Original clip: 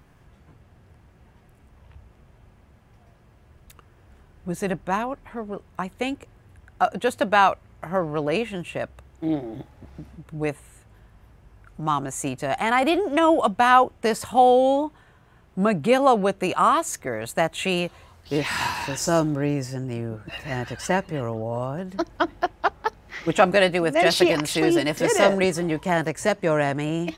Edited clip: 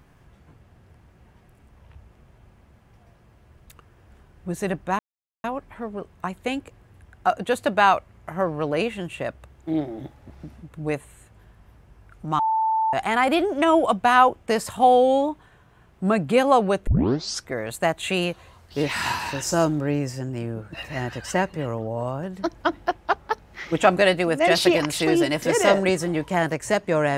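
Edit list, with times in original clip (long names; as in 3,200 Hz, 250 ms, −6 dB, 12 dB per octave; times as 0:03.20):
0:04.99: splice in silence 0.45 s
0:11.94–0:12.48: beep over 885 Hz −18.5 dBFS
0:16.42: tape start 0.64 s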